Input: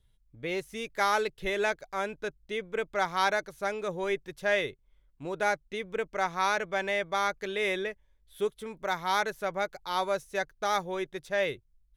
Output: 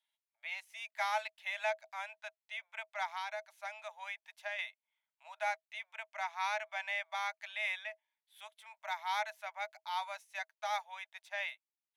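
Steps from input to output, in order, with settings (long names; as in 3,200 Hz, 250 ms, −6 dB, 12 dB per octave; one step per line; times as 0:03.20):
Chebyshev high-pass with heavy ripple 620 Hz, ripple 9 dB
0:03.06–0:04.59: downward compressor 6 to 1, threshold −35 dBFS, peak gain reduction 7.5 dB
level −2.5 dB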